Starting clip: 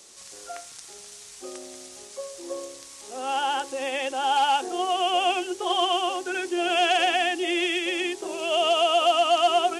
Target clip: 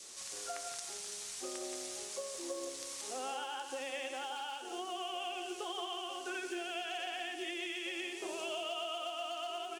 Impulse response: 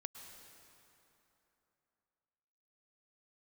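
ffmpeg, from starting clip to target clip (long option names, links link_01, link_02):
-filter_complex "[0:a]lowshelf=frequency=490:gain=-5,acrusher=bits=8:mode=log:mix=0:aa=0.000001,acompressor=threshold=-37dB:ratio=12,adynamicequalizer=threshold=0.002:dfrequency=830:dqfactor=2.4:tfrequency=830:tqfactor=2.4:attack=5:release=100:ratio=0.375:range=2:mode=cutabove:tftype=bell,aecho=1:1:175:0.447[link_01];[1:a]atrim=start_sample=2205,atrim=end_sample=6174,asetrate=37044,aresample=44100[link_02];[link_01][link_02]afir=irnorm=-1:irlink=0,volume=3.5dB"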